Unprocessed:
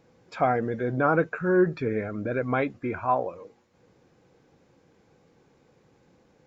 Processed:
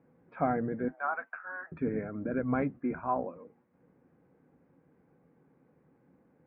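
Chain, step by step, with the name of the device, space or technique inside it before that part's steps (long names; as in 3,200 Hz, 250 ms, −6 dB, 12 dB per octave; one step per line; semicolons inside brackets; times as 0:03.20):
0:00.88–0:01.72: elliptic high-pass filter 690 Hz, stop band 60 dB
sub-octave bass pedal (sub-octave generator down 1 octave, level −5 dB; loudspeaker in its box 70–2,000 Hz, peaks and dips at 100 Hz −8 dB, 160 Hz +6 dB, 260 Hz +8 dB)
level −7 dB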